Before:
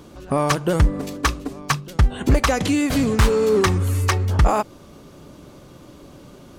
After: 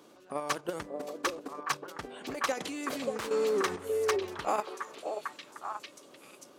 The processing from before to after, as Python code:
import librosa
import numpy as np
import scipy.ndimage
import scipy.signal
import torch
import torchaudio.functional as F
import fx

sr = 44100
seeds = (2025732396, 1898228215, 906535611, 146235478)

p1 = scipy.signal.sosfilt(scipy.signal.butter(2, 340.0, 'highpass', fs=sr, output='sos'), x)
p2 = fx.level_steps(p1, sr, step_db=10)
p3 = p2 + fx.echo_stepped(p2, sr, ms=583, hz=470.0, octaves=1.4, feedback_pct=70, wet_db=-1, dry=0)
y = p3 * 10.0 ** (-7.5 / 20.0)